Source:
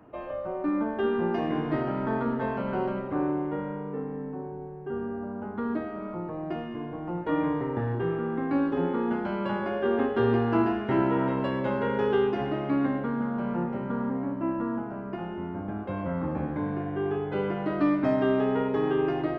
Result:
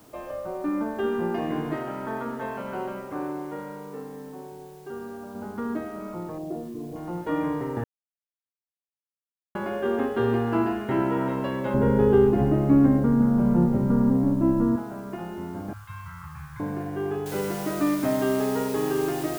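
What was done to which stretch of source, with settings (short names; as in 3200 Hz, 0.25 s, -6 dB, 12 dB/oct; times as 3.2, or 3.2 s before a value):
1.73–5.35 low shelf 340 Hz -8.5 dB
6.38–6.96 formant sharpening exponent 2
7.84–9.55 mute
11.74–14.76 tilt -4.5 dB/oct
15.73–16.6 elliptic band-stop 130–1100 Hz
17.26 noise floor step -59 dB -41 dB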